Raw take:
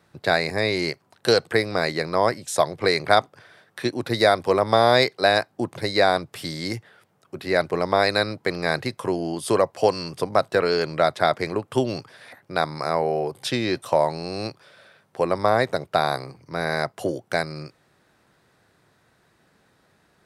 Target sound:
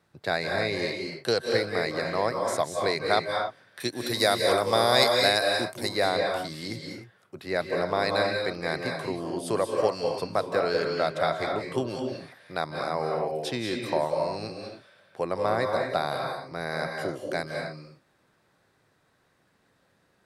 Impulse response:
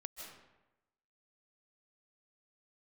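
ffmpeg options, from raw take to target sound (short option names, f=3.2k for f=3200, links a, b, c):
-filter_complex "[0:a]asettb=1/sr,asplit=3[a][b][c];[a]atrim=end=3.804[d];[b]atrim=start=3.8:end=5.89,asetpts=PTS-STARTPTS,afade=t=in:d=0.004:c=qsin,afade=t=out:st=2.086:d=0.004:c=qsin,aemphasis=mode=production:type=75kf[e];[c]atrim=start=5.886[f];[d][e]acrossfade=d=0.004:c1=hsin:c2=qsin[g];[g][f]acrossfade=d=0.004:c1=qsin:c2=hsin[h];[1:a]atrim=start_sample=2205,afade=t=out:st=0.31:d=0.01,atrim=end_sample=14112,asetrate=37044,aresample=44100[i];[h][i]afir=irnorm=-1:irlink=0,volume=-2.5dB"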